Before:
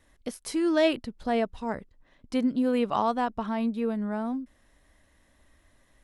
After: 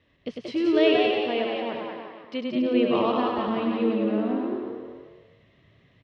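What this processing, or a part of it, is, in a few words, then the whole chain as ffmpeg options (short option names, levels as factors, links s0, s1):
frequency-shifting delay pedal into a guitar cabinet: -filter_complex "[0:a]asettb=1/sr,asplit=3[s0][s1][s2];[s0]atrim=end=0.994[s3];[s1]atrim=start=0.99:end=2.53,asetpts=PTS-STARTPTS,afade=t=in:d=0.004:c=qsin,afade=t=out:st=1.536:d=0.004:c=qsin,highpass=f=450:p=1[s4];[s2]atrim=start=2.526[s5];[s3][s4]acrossfade=d=0.004:c1=hsin:c2=qsin[s6];[s6][s5]acrossfade=d=0.004:c1=qsin:c2=hsin,asplit=5[s7][s8][s9][s10][s11];[s8]adelay=180,afreqshift=100,volume=0.631[s12];[s9]adelay=360,afreqshift=200,volume=0.214[s13];[s10]adelay=540,afreqshift=300,volume=0.0733[s14];[s11]adelay=720,afreqshift=400,volume=0.0248[s15];[s7][s12][s13][s14][s15]amix=inputs=5:normalize=0,highpass=82,equalizer=f=100:t=q:w=4:g=6,equalizer=f=160:t=q:w=4:g=4,equalizer=f=430:t=q:w=4:g=4,equalizer=f=830:t=q:w=4:g=-8,equalizer=f=1500:t=q:w=4:g=-7,equalizer=f=2800:t=q:w=4:g=7,lowpass=f=4100:w=0.5412,lowpass=f=4100:w=1.3066,aecho=1:1:100|210|331|464.1|610.5:0.631|0.398|0.251|0.158|0.1"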